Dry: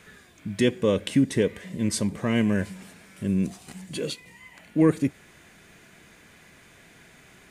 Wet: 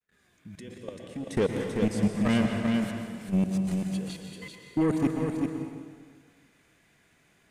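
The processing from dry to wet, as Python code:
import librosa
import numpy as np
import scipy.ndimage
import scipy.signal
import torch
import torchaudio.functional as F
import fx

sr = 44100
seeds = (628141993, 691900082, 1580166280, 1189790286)

y = fx.fade_in_head(x, sr, length_s=1.57)
y = fx.level_steps(y, sr, step_db=24)
y = 10.0 ** (-23.5 / 20.0) * np.tanh(y / 10.0 ** (-23.5 / 20.0))
y = fx.step_gate(y, sr, bpm=104, pattern='xx..xx...xxxxxx', floor_db=-12.0, edge_ms=4.5, at=(0.97, 3.32), fade=0.02)
y = y + 10.0 ** (-5.0 / 20.0) * np.pad(y, (int(388 * sr / 1000.0), 0))[:len(y)]
y = fx.rev_plate(y, sr, seeds[0], rt60_s=1.7, hf_ratio=0.85, predelay_ms=105, drr_db=4.0)
y = y * librosa.db_to_amplitude(5.0)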